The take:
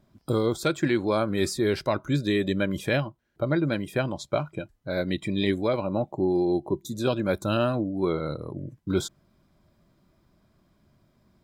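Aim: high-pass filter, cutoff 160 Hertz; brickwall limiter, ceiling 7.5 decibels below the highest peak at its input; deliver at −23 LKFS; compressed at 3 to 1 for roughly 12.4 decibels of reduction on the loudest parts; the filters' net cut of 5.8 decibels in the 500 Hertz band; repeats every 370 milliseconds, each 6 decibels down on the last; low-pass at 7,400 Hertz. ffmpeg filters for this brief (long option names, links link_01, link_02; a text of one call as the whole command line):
ffmpeg -i in.wav -af "highpass=160,lowpass=7400,equalizer=frequency=500:width_type=o:gain=-8,acompressor=threshold=-40dB:ratio=3,alimiter=level_in=6dB:limit=-24dB:level=0:latency=1,volume=-6dB,aecho=1:1:370|740|1110|1480|1850|2220:0.501|0.251|0.125|0.0626|0.0313|0.0157,volume=18.5dB" out.wav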